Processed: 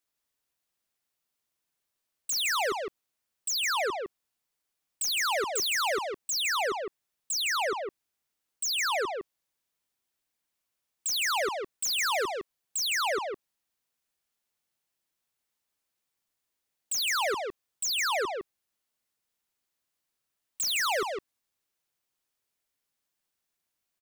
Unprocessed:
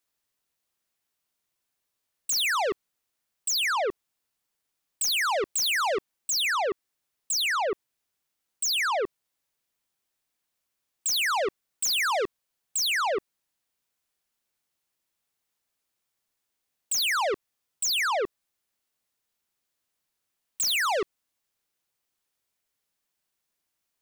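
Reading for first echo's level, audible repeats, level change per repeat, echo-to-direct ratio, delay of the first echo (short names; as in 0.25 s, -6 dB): -4.5 dB, 1, no steady repeat, -4.5 dB, 0.159 s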